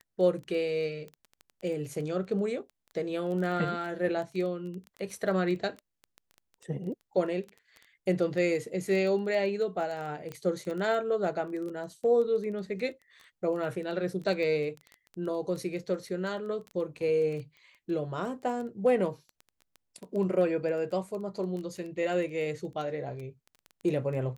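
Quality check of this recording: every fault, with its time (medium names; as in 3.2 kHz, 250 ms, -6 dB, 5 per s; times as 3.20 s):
crackle 11 per s -35 dBFS
10.32 s: pop -25 dBFS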